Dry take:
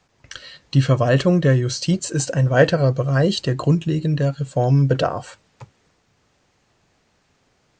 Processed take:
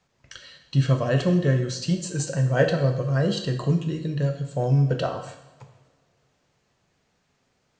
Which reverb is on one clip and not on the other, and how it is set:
coupled-rooms reverb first 0.76 s, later 2.5 s, from −20 dB, DRR 4.5 dB
level −7.5 dB

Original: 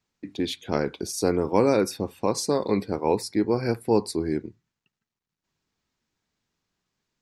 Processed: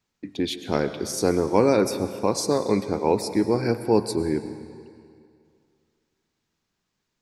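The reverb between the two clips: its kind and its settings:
comb and all-pass reverb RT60 2.3 s, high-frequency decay 0.9×, pre-delay 70 ms, DRR 11 dB
level +1.5 dB

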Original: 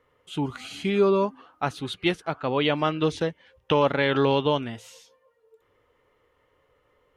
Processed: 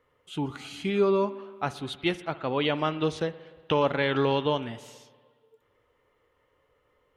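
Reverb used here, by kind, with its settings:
spring reverb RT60 1.6 s, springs 59 ms, chirp 30 ms, DRR 15.5 dB
level −3 dB

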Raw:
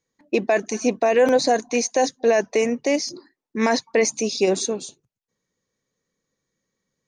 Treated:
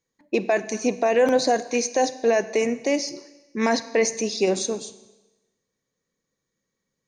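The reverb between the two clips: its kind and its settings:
four-comb reverb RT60 1.1 s, combs from 31 ms, DRR 14 dB
level −2 dB

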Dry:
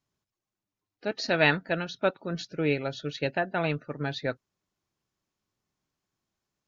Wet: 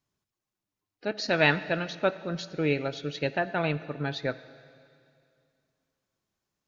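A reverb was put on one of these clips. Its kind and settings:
dense smooth reverb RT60 2.4 s, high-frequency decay 1×, DRR 14.5 dB

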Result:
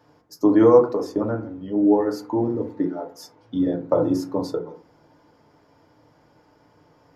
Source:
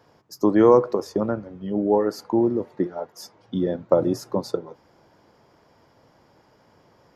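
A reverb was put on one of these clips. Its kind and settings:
feedback delay network reverb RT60 0.39 s, low-frequency decay 1.4×, high-frequency decay 0.35×, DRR 2 dB
level −3 dB

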